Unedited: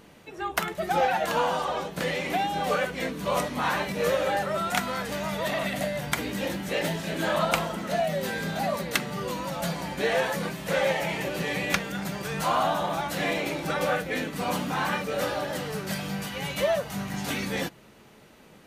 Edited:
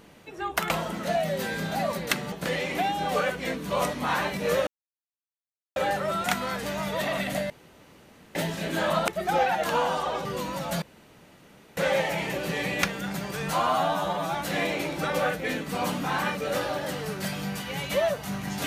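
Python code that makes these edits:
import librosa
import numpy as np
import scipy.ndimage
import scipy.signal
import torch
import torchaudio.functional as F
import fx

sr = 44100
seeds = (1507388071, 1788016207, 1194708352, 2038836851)

y = fx.edit(x, sr, fx.swap(start_s=0.7, length_s=1.17, other_s=7.54, other_length_s=1.62),
    fx.insert_silence(at_s=4.22, length_s=1.09),
    fx.room_tone_fill(start_s=5.96, length_s=0.85),
    fx.room_tone_fill(start_s=9.73, length_s=0.95),
    fx.stretch_span(start_s=12.51, length_s=0.49, factor=1.5), tone=tone)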